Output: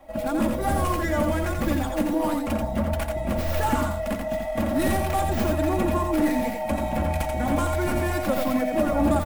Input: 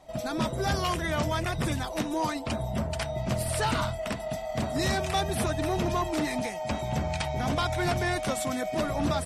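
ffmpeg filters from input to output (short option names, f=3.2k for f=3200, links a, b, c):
-filter_complex "[0:a]aecho=1:1:3.6:0.76,acrossover=split=130|820|3100[a][b][c][d];[c]alimiter=level_in=5dB:limit=-24dB:level=0:latency=1:release=233,volume=-5dB[e];[d]aeval=exprs='abs(val(0))':c=same[f];[a][b][e][f]amix=inputs=4:normalize=0,aecho=1:1:86:0.596,volume=3dB"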